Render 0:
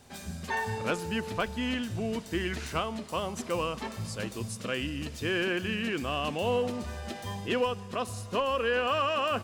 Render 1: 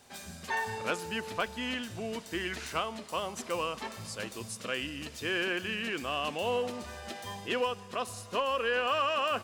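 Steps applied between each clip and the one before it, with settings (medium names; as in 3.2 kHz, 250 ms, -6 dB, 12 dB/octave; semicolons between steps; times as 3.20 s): bass shelf 290 Hz -11 dB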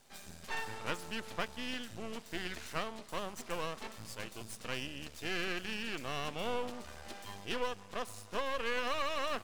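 half-wave rectifier; trim -2 dB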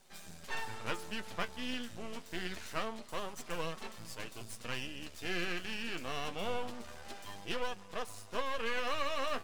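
flange 0.26 Hz, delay 5.2 ms, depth 7.6 ms, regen +47%; trim +3.5 dB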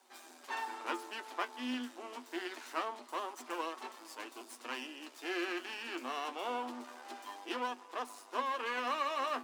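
rippled Chebyshev high-pass 240 Hz, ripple 9 dB; trim +5.5 dB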